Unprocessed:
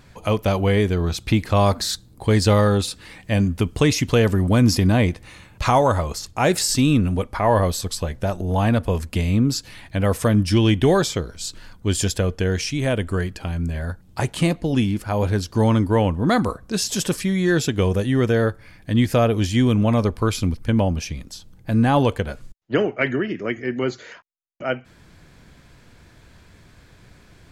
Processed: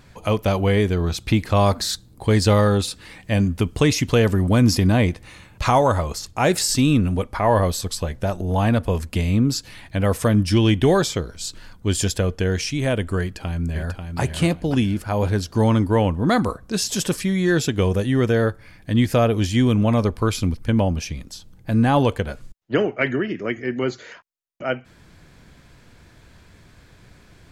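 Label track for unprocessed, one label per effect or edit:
13.210000	14.200000	delay throw 540 ms, feedback 30%, level −6.5 dB

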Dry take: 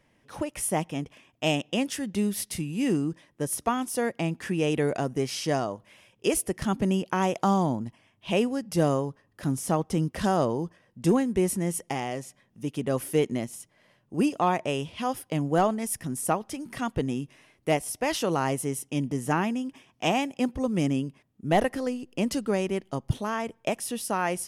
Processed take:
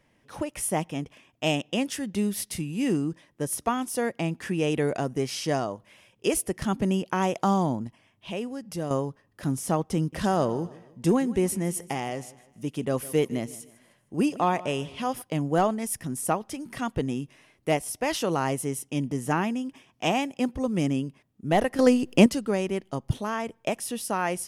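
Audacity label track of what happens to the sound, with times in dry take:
7.870000	8.910000	downward compressor 1.5 to 1, threshold −42 dBFS
9.970000	15.220000	repeating echo 155 ms, feedback 39%, level −19 dB
21.790000	22.260000	clip gain +11 dB

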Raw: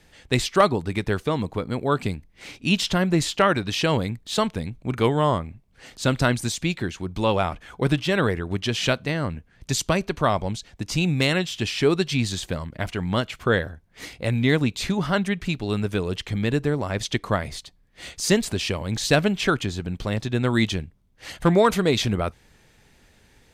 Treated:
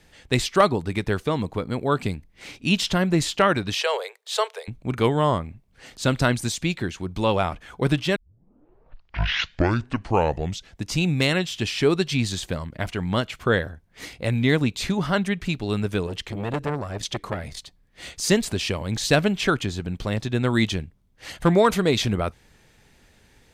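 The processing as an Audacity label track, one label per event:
3.750000	4.680000	Butterworth high-pass 410 Hz 96 dB per octave
8.160000	8.160000	tape start 2.70 s
16.070000	17.570000	saturating transformer saturates under 1,100 Hz

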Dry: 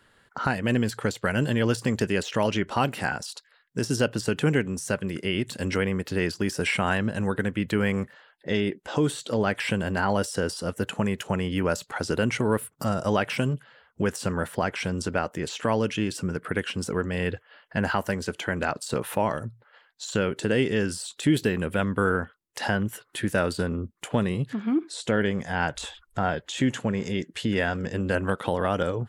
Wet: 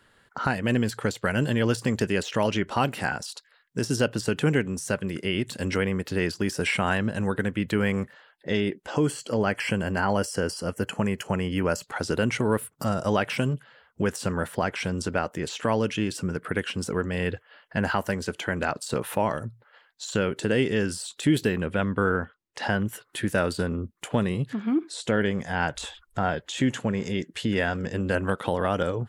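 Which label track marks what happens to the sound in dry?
8.900000	11.830000	Butterworth band-reject 3,700 Hz, Q 4.2
21.560000	22.700000	high-frequency loss of the air 74 metres

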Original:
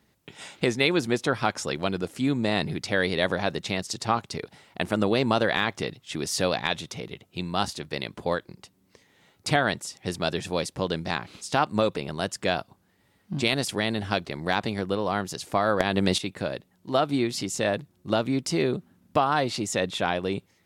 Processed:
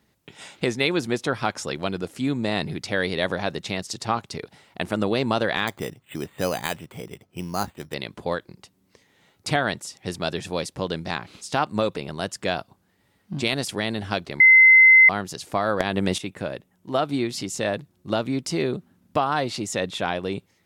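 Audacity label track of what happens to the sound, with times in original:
5.670000	7.940000	bad sample-rate conversion rate divided by 8×, down filtered, up hold
14.400000	15.090000	beep over 2,060 Hz −8.5 dBFS
15.900000	16.990000	parametric band 4,300 Hz −7 dB 0.42 octaves

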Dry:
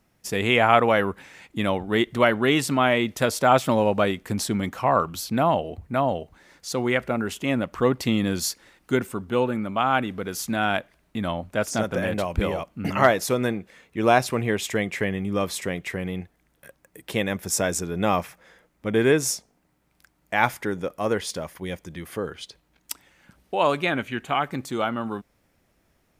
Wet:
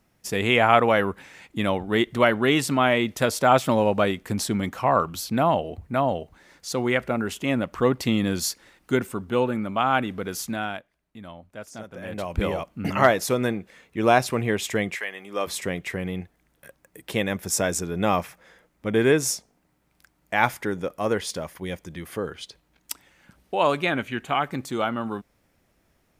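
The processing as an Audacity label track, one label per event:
10.340000	12.470000	duck −14 dB, fades 0.49 s linear
14.940000	15.460000	high-pass filter 1,200 Hz → 370 Hz

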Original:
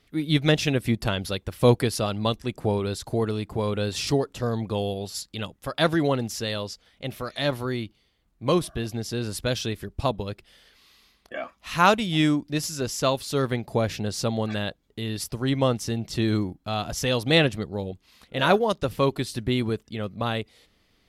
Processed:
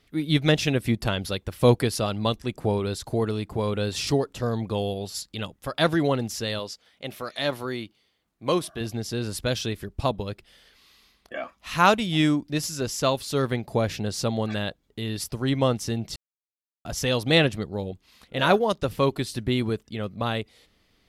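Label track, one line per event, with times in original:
6.590000	8.810000	high-pass filter 260 Hz 6 dB per octave
16.160000	16.850000	silence

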